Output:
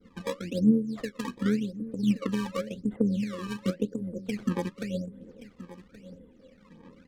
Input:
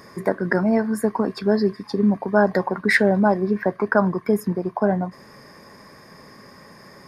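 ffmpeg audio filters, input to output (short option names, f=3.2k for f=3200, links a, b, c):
-af "afftfilt=real='re*(1-between(b*sr/4096,550,8900))':imag='im*(1-between(b*sr/4096,550,8900))':win_size=4096:overlap=0.75,agate=range=-33dB:threshold=-44dB:ratio=3:detection=peak,aecho=1:1:3.9:1,adynamicequalizer=threshold=0.00126:dfrequency=3200:dqfactor=2.2:tfrequency=3200:tqfactor=2.2:attack=5:release=100:ratio=0.375:range=2:mode=cutabove:tftype=bell,acompressor=threshold=-26dB:ratio=2.5,flanger=delay=0.6:depth=7.7:regen=66:speed=0.34:shape=sinusoidal,tremolo=f=85:d=0.333,acrusher=samples=18:mix=1:aa=0.000001:lfo=1:lforange=28.8:lforate=0.91,adynamicsmooth=sensitivity=6.5:basefreq=4.7k,aphaser=in_gain=1:out_gain=1:delay=1.8:decay=0.57:speed=1.3:type=sinusoidal,aecho=1:1:1125:0.158"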